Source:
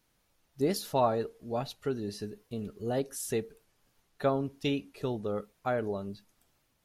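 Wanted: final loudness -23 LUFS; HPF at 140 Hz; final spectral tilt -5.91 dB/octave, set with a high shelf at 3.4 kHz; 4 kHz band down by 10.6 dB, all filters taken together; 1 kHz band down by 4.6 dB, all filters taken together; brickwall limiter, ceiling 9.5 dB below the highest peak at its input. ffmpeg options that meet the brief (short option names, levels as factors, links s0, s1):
-af "highpass=140,equalizer=f=1000:t=o:g=-5.5,highshelf=f=3400:g=-9,equalizer=f=4000:t=o:g=-7,volume=5.96,alimiter=limit=0.299:level=0:latency=1"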